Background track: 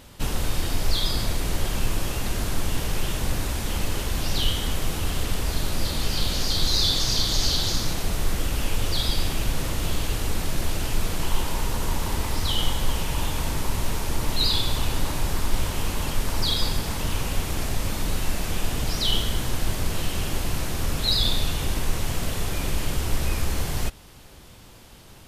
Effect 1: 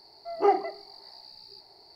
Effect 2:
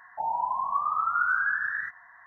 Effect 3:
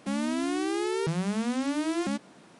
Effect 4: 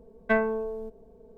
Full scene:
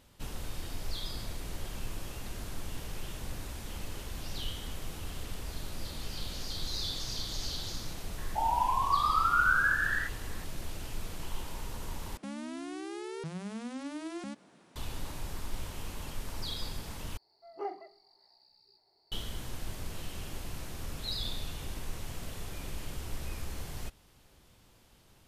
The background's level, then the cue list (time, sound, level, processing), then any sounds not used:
background track -14 dB
8.18 s: add 2 -0.5 dB
12.17 s: replace with 3 -7 dB + peak limiter -26 dBFS
17.17 s: replace with 1 -16 dB
not used: 4

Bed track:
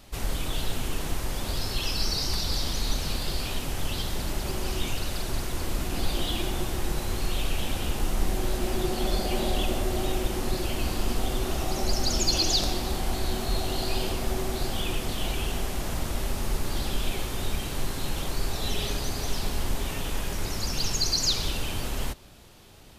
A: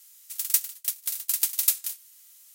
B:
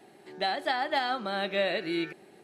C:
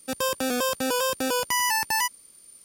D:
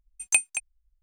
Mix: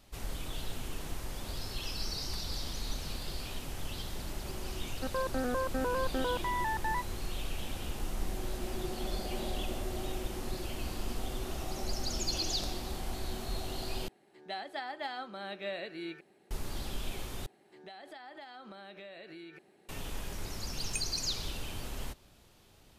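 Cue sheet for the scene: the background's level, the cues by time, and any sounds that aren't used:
bed track -9.5 dB
4.94 s: add C -6.5 dB + steep low-pass 1.8 kHz
14.08 s: replace with B -10.5 dB
17.46 s: replace with B -9.5 dB + compression 8:1, threshold -35 dBFS
20.61 s: add D -18 dB
not used: A

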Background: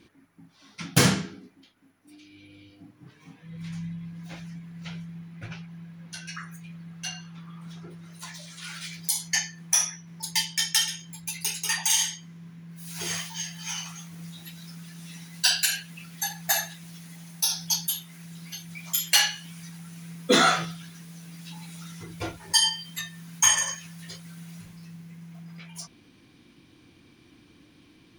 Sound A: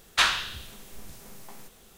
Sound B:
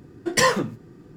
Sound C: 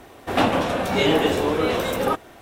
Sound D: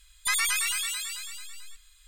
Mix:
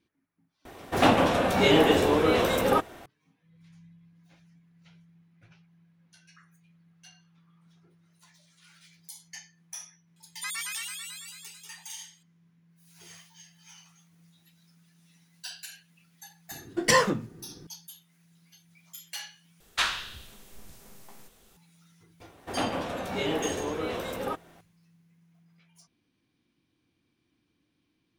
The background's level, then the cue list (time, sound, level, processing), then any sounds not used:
background -19 dB
0.65 s: add C -1 dB
10.16 s: add D -9 dB + steep high-pass 320 Hz
16.51 s: add B -2.5 dB
19.60 s: replace with A -5 dB
22.20 s: add C -10.5 dB

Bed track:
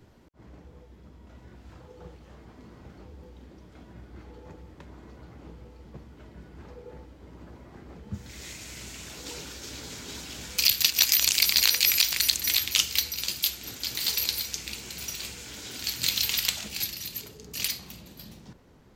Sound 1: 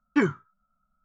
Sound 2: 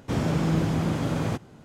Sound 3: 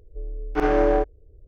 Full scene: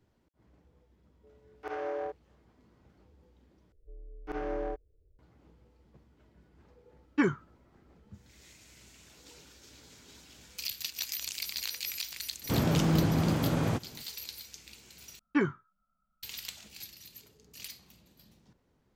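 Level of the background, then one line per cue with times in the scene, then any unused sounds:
bed track -15 dB
1.08 s: add 3 -14 dB + high-pass 400 Hz 24 dB/octave
3.72 s: replace with 3 -15.5 dB
7.02 s: add 1 -4 dB
12.41 s: add 2 -2 dB, fades 0.05 s
15.19 s: replace with 1 -5 dB + low-pass 5.1 kHz

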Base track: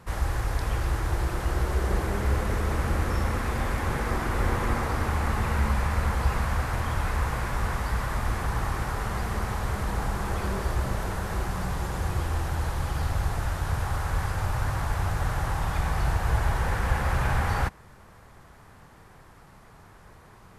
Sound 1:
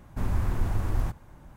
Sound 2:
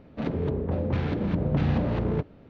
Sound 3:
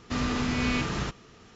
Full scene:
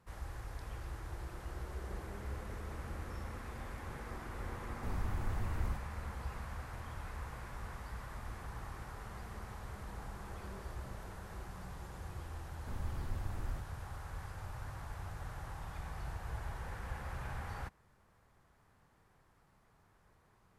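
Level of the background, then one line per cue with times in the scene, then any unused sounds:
base track -17.5 dB
4.66 s: add 1 -11 dB
12.50 s: add 1 -14.5 dB
not used: 2, 3

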